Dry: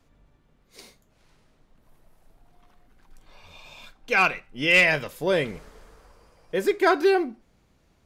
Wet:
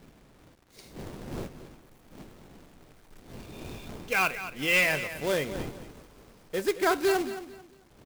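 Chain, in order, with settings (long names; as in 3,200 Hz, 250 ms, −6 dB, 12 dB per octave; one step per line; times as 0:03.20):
wind on the microphone 350 Hz −41 dBFS
log-companded quantiser 4 bits
repeating echo 221 ms, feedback 26%, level −12.5 dB
level −5.5 dB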